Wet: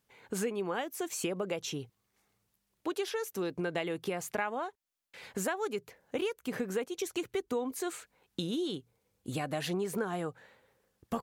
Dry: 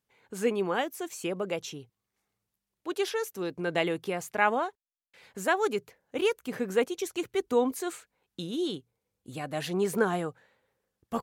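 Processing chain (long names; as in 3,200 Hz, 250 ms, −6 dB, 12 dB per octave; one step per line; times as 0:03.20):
downward compressor 6 to 1, threshold −38 dBFS, peak gain reduction 18 dB
level +6.5 dB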